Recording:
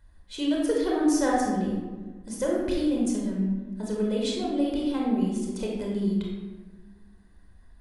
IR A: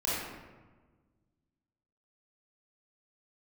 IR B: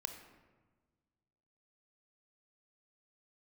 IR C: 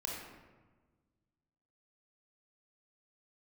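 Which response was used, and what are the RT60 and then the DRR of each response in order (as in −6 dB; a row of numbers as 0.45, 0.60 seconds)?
C; 1.4, 1.4, 1.4 seconds; −9.0, 6.0, −2.5 decibels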